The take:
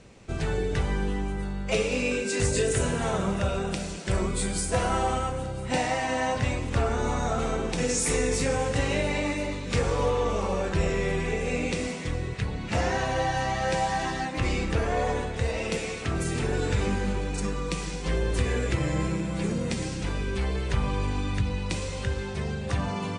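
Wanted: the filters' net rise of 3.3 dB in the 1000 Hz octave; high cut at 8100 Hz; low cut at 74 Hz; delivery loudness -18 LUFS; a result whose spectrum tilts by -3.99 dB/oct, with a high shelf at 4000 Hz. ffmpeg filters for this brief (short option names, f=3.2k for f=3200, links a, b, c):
-af "highpass=74,lowpass=8.1k,equalizer=f=1k:t=o:g=4,highshelf=f=4k:g=8,volume=9dB"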